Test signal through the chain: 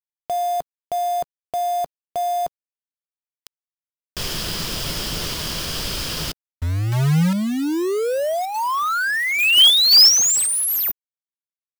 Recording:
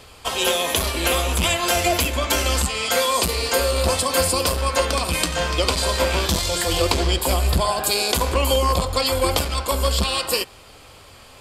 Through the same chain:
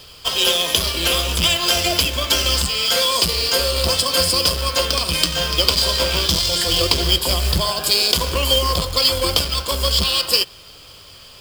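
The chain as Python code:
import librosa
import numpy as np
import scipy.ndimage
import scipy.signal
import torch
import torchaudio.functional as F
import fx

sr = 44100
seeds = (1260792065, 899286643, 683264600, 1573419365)

y = fx.graphic_eq_31(x, sr, hz=(160, 250, 800, 2000, 3150, 5000), db=(5, -4, -7, -3, 9, 12))
y = fx.quant_companded(y, sr, bits=4)
y = y * 10.0 ** (-1.0 / 20.0)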